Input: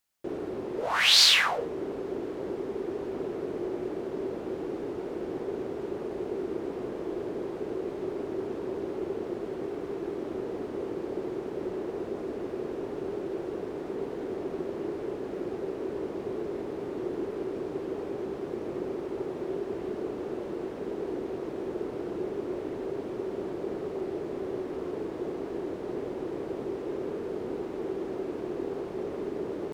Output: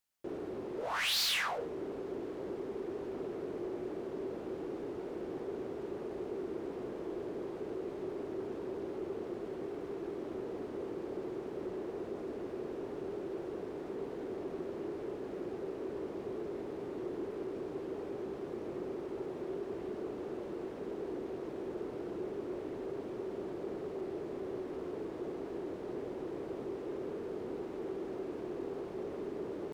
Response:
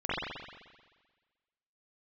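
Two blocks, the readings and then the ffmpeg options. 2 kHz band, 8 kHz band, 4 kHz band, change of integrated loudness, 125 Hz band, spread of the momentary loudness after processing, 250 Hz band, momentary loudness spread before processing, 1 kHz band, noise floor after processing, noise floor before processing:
−9.5 dB, can't be measured, −13.0 dB, −8.0 dB, −6.0 dB, 1 LU, −6.0 dB, 2 LU, −7.0 dB, −44 dBFS, −38 dBFS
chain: -af "asoftclip=type=tanh:threshold=-23.5dB,volume=-5.5dB"

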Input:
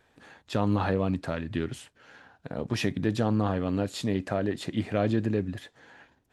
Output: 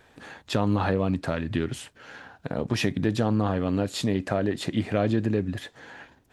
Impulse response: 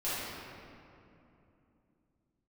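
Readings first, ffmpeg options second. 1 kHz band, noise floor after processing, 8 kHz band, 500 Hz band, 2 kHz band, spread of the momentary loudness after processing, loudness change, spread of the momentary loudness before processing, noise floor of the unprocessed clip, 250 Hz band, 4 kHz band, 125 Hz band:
+2.0 dB, −61 dBFS, +4.5 dB, +2.5 dB, +3.5 dB, 19 LU, +2.5 dB, 11 LU, −69 dBFS, +2.5 dB, +4.0 dB, +2.5 dB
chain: -af "acompressor=threshold=-38dB:ratio=1.5,volume=8dB"

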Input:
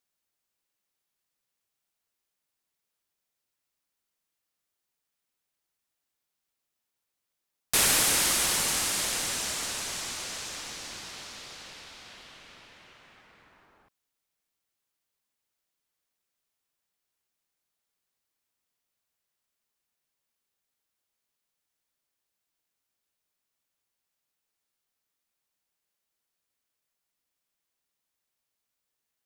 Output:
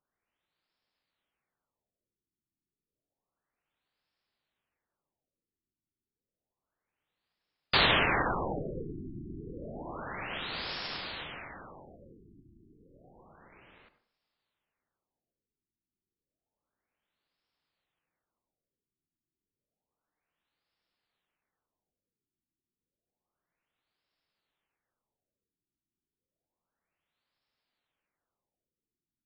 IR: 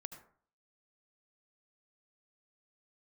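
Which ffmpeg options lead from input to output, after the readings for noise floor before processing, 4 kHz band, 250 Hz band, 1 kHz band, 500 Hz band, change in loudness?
−84 dBFS, −4.0 dB, +3.5 dB, +3.0 dB, +3.5 dB, −5.5 dB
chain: -filter_complex "[0:a]aeval=exprs='val(0)*sin(2*PI*1300*n/s)':channel_layout=same,asplit=2[link_01][link_02];[1:a]atrim=start_sample=2205[link_03];[link_02][link_03]afir=irnorm=-1:irlink=0,volume=6.5dB[link_04];[link_01][link_04]amix=inputs=2:normalize=0,afftfilt=real='re*lt(b*sr/1024,380*pow(5600/380,0.5+0.5*sin(2*PI*0.3*pts/sr)))':imag='im*lt(b*sr/1024,380*pow(5600/380,0.5+0.5*sin(2*PI*0.3*pts/sr)))':win_size=1024:overlap=0.75"

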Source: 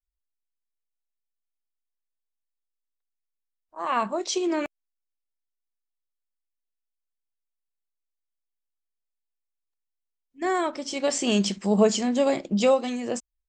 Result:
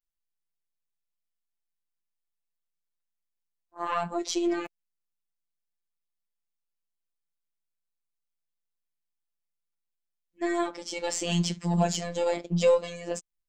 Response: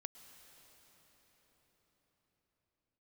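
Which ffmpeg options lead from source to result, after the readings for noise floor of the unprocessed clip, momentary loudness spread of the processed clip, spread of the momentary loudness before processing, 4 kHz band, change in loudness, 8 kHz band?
−83 dBFS, 11 LU, 9 LU, −3.5 dB, −3.5 dB, −3.0 dB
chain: -af "aeval=exprs='0.422*(cos(1*acos(clip(val(0)/0.422,-1,1)))-cos(1*PI/2))+0.00944*(cos(6*acos(clip(val(0)/0.422,-1,1)))-cos(6*PI/2))+0.0133*(cos(8*acos(clip(val(0)/0.422,-1,1)))-cos(8*PI/2))':channel_layout=same,afftfilt=real='hypot(re,im)*cos(PI*b)':imag='0':win_size=1024:overlap=0.75"

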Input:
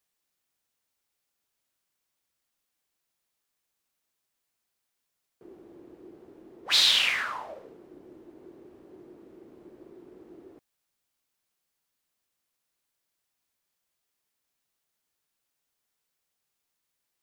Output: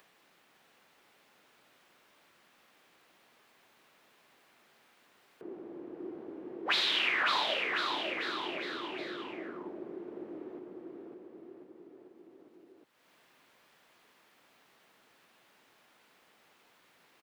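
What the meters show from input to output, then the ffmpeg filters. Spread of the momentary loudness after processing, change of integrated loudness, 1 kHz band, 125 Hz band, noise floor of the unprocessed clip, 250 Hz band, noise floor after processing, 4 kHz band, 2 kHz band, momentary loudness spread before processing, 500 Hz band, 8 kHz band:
22 LU, −11.5 dB, +5.0 dB, can't be measured, −82 dBFS, +7.0 dB, −67 dBFS, −6.5 dB, 0.0 dB, 16 LU, +7.0 dB, −15.0 dB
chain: -filter_complex "[0:a]acrossover=split=150 3600:gain=0.126 1 0.224[link_01][link_02][link_03];[link_01][link_02][link_03]amix=inputs=3:normalize=0,acompressor=threshold=-30dB:ratio=6,highshelf=frequency=4000:gain=-6,asplit=2[link_04][link_05];[link_05]aecho=0:1:550|1045|1490|1891|2252:0.631|0.398|0.251|0.158|0.1[link_06];[link_04][link_06]amix=inputs=2:normalize=0,acompressor=mode=upward:threshold=-55dB:ratio=2.5,volume=5.5dB"

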